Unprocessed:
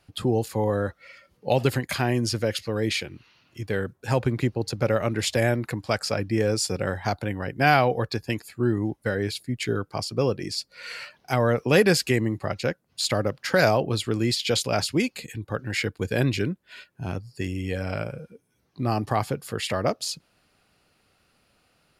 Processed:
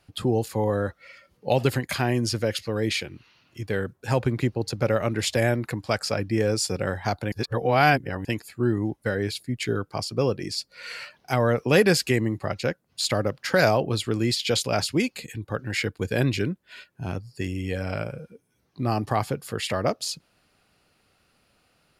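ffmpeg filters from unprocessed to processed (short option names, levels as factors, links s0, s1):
-filter_complex "[0:a]asplit=3[s0][s1][s2];[s0]atrim=end=7.322[s3];[s1]atrim=start=7.318:end=8.252,asetpts=PTS-STARTPTS,areverse[s4];[s2]atrim=start=8.248[s5];[s3][s4]acrossfade=d=0.004:c1=hsin:c2=hsin[s6];[s6][s5]acrossfade=d=0.004:c1=hsin:c2=hsin"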